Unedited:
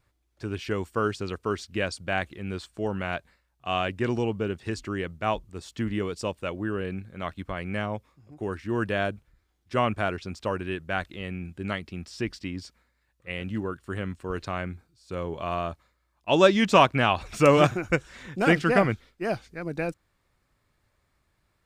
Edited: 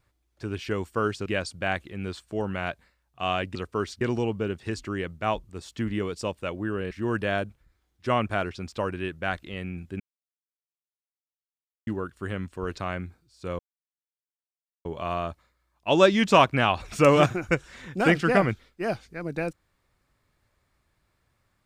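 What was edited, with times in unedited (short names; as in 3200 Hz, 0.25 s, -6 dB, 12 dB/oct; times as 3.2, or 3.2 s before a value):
1.26–1.72 move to 4.01
6.91–8.58 cut
11.67–13.54 mute
15.26 insert silence 1.26 s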